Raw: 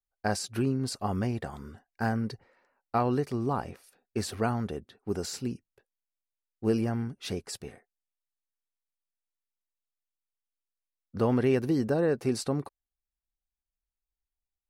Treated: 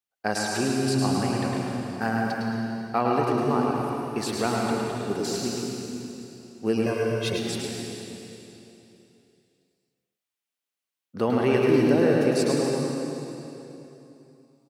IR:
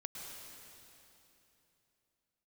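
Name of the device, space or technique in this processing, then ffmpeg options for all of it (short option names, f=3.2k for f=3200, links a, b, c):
PA in a hall: -filter_complex "[0:a]highpass=170,equalizer=f=2.8k:t=o:w=1:g=4.5,aecho=1:1:106:0.531[a];[1:a]atrim=start_sample=2205[b];[a][b]afir=irnorm=-1:irlink=0,asettb=1/sr,asplit=3[c][d][e];[c]atrim=end=6.864[f];[d]atrim=start=6.86:end=7.38,asetpts=PTS-STARTPTS,afade=t=in:d=0.004:c=qsin,afade=t=out:st=0.516:d=0.004:c=qsin,aecho=1:1:1.9:0.82,atrim=end_sample=22932[g];[e]atrim=start=7.376[h];[f][g]acrossfade=d=0.004:c1=hsin:c2=qsin[i];[i][h]acrossfade=d=0.004:c1=qsin:c2=hsin,volume=7dB"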